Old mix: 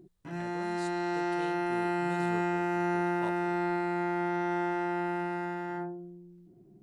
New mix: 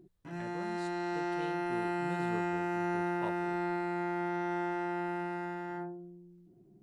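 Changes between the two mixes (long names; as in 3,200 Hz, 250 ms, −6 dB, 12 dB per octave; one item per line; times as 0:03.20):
speech: add bass and treble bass +3 dB, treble −8 dB
background −3.5 dB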